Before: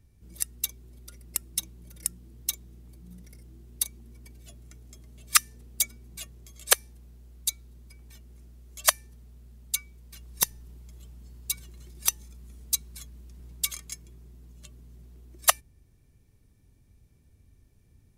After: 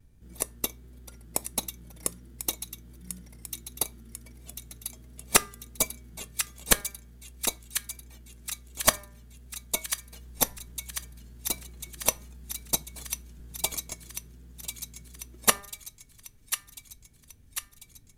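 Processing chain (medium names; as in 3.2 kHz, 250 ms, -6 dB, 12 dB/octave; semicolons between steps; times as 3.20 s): band-stop 5.1 kHz, Q 13; de-hum 203.3 Hz, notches 11; in parallel at -7 dB: sample-and-hold 27×; on the sum: vibrato 1.4 Hz 42 cents; feedback echo behind a high-pass 1044 ms, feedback 59%, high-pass 1.8 kHz, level -8 dB; on a send at -13 dB: reverberation RT60 0.25 s, pre-delay 4 ms; on the sum: trim -1 dB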